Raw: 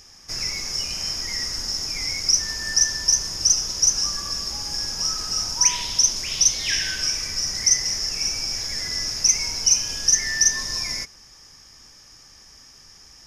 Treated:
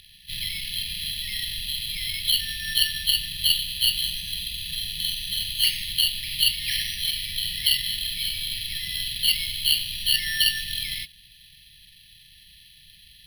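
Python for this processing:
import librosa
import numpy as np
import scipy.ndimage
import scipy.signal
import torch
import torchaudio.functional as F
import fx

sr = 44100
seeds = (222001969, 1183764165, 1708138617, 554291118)

y = fx.freq_compress(x, sr, knee_hz=2400.0, ratio=1.5)
y = np.repeat(y[::6], 6)[:len(y)]
y = fx.brickwall_bandstop(y, sr, low_hz=210.0, high_hz=1700.0)
y = F.gain(torch.from_numpy(y), -1.5).numpy()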